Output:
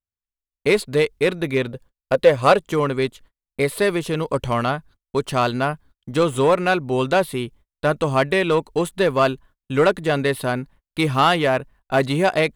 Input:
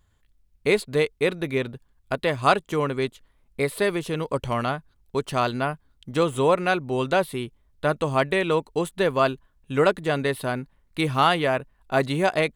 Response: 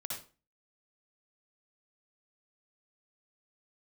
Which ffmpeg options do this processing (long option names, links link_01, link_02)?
-filter_complex "[0:a]asettb=1/sr,asplit=3[link_01][link_02][link_03];[link_01]atrim=end=1.714[link_04];[link_02]atrim=start=1.71:end=2.59,asetpts=PTS-STARTPTS,afade=type=in:duration=0.004:curve=qsin,afade=type=out:start_time=0.876:duration=0.004:curve=qsin,equalizer=frequency=520:width_type=o:width=0.29:gain=13[link_05];[link_03]atrim=start=2.586[link_06];[link_04][link_05]acrossfade=duration=0.004:curve1=hsin:curve2=qsin[link_07];[link_07][link_06]acrossfade=duration=0.004:curve1=qsin:curve2=hsin,agate=range=-37dB:threshold=-49dB:ratio=16:detection=peak,asplit=2[link_08][link_09];[link_09]asoftclip=type=hard:threshold=-18.5dB,volume=-3.5dB[link_10];[link_08][link_10]amix=inputs=2:normalize=0"